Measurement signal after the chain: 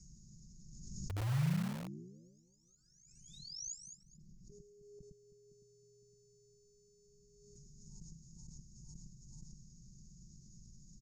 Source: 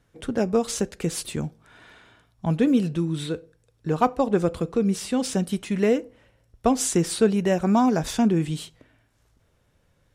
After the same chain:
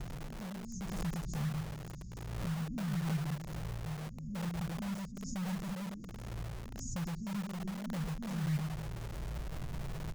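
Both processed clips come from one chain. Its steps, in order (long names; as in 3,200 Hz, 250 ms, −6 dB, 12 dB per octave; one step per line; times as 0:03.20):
converter with a step at zero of −27.5 dBFS
reversed playback
downward compressor 5 to 1, threshold −28 dBFS
reversed playback
inverse Chebyshev band-stop filter 680–3,000 Hz, stop band 80 dB
delay that swaps between a low-pass and a high-pass 105 ms, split 2,000 Hz, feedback 58%, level −2 dB
treble cut that deepens with the level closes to 2,800 Hz, closed at −30 dBFS
Chebyshev low-pass with heavy ripple 6,900 Hz, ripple 6 dB
comb filter 5.5 ms, depth 86%
in parallel at −8 dB: wrap-around overflow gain 42.5 dB
on the sum: low-shelf EQ 280 Hz −8.5 dB
background raised ahead of every attack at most 34 dB per second
level +7 dB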